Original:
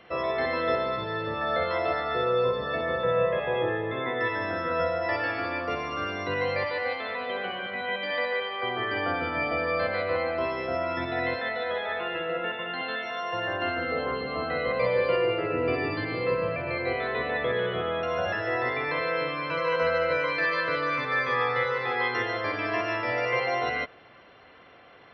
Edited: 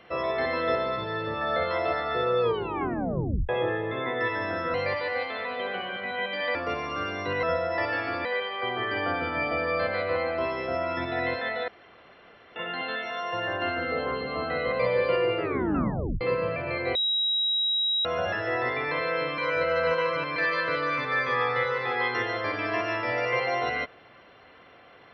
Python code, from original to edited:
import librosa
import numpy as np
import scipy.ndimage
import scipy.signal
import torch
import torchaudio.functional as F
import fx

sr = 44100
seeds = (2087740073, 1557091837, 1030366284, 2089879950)

y = fx.edit(x, sr, fx.tape_stop(start_s=2.41, length_s=1.08),
    fx.swap(start_s=4.74, length_s=0.82, other_s=6.44, other_length_s=1.81),
    fx.room_tone_fill(start_s=11.68, length_s=0.88),
    fx.tape_stop(start_s=15.42, length_s=0.79),
    fx.bleep(start_s=16.95, length_s=1.1, hz=3840.0, db=-22.5),
    fx.reverse_span(start_s=19.38, length_s=0.98), tone=tone)